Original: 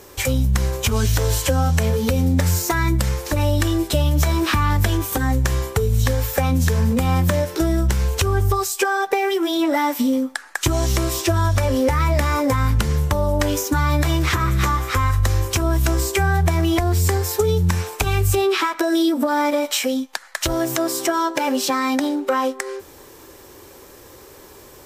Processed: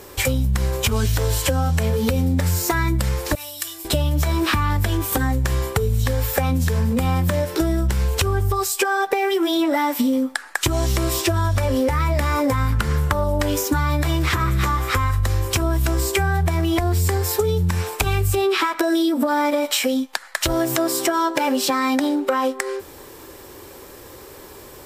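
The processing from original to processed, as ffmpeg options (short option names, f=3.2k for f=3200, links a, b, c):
-filter_complex "[0:a]asettb=1/sr,asplit=3[a][b][c];[a]atrim=end=3.354[d];[b]atrim=start=3.35:end=3.85,asetpts=PTS-STARTPTS,afade=t=in:d=0.004:c=qsin,afade=t=out:st=0.496:d=0.004:c=qsin,aderivative[e];[c]atrim=start=3.846[f];[d][e]acrossfade=d=0.004:c1=hsin:c2=qsin[g];[g][f]acrossfade=d=0.004:c1=qsin:c2=hsin,asettb=1/sr,asplit=3[h][i][j];[h]atrim=end=12.724[k];[i]atrim=start=12.72:end=13.24,asetpts=PTS-STARTPTS,afade=t=in:d=0.004:c=qsin,afade=t=out:st=0.516:d=0.004:c=qsin,equalizer=f=1.4k:t=o:w=0.96:g=8.5[l];[j]atrim=start=13.236[m];[k][l]acrossfade=d=0.004:c1=hsin:c2=qsin[n];[n][m]acrossfade=d=0.004:c1=qsin:c2=hsin,equalizer=f=6.2k:t=o:w=0.29:g=-4.5,acompressor=threshold=-19dB:ratio=6,volume=3dB"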